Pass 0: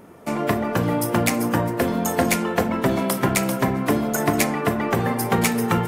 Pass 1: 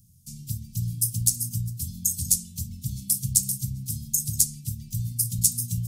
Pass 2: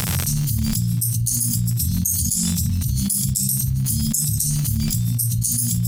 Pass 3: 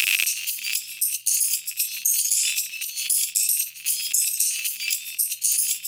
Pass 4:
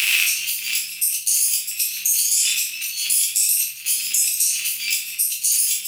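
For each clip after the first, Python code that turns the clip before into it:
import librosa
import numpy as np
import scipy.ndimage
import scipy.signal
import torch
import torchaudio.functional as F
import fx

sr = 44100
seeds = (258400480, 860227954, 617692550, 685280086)

y1 = scipy.signal.sosfilt(scipy.signal.cheby2(4, 70, [430.0, 1600.0], 'bandstop', fs=sr, output='sos'), x)
y1 = fx.dynamic_eq(y1, sr, hz=8900.0, q=0.99, threshold_db=-41.0, ratio=4.0, max_db=7)
y1 = y1 * 10.0 ** (1.0 / 20.0)
y2 = fx.spec_ripple(y1, sr, per_octave=1.8, drift_hz=1.2, depth_db=10)
y2 = fx.dmg_crackle(y2, sr, seeds[0], per_s=120.0, level_db=-41.0)
y2 = fx.env_flatten(y2, sr, amount_pct=100)
y2 = y2 * 10.0 ** (-5.5 / 20.0)
y3 = fx.highpass_res(y2, sr, hz=2600.0, q=11.0)
y4 = fx.room_shoebox(y3, sr, seeds[1], volume_m3=78.0, walls='mixed', distance_m=1.0)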